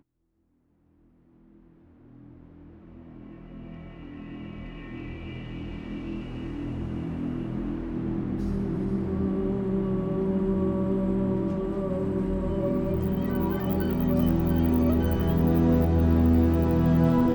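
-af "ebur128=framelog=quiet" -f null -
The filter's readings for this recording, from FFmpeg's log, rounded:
Integrated loudness:
  I:         -26.2 LUFS
  Threshold: -37.6 LUFS
Loudness range:
  LRA:        19.3 LU
  Threshold: -48.4 LUFS
  LRA low:   -42.6 LUFS
  LRA high:  -23.3 LUFS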